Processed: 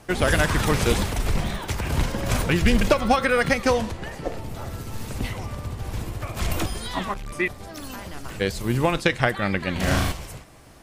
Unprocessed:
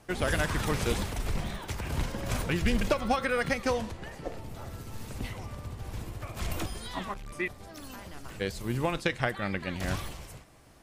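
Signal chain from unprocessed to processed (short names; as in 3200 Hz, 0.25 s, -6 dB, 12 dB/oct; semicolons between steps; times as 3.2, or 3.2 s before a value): 9.72–10.12 flutter echo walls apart 6.3 m, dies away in 0.88 s; gain +8 dB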